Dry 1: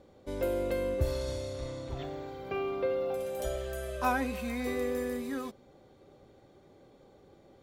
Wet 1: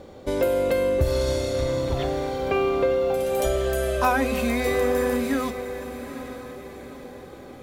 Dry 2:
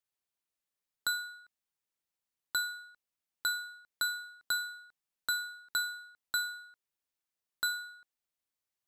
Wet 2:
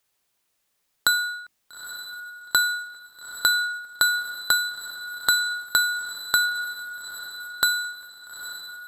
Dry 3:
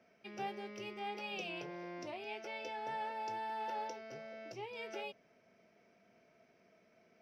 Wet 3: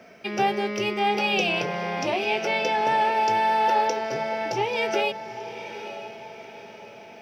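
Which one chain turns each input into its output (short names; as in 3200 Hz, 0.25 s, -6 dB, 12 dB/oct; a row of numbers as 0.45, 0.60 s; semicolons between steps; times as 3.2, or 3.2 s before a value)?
notches 50/100/150/200/250/300/350 Hz; compressor 2:1, threshold -37 dBFS; on a send: diffused feedback echo 0.867 s, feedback 45%, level -11.5 dB; on the sum: match loudness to -24 LUFS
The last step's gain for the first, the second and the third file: +14.5, +16.5, +19.5 dB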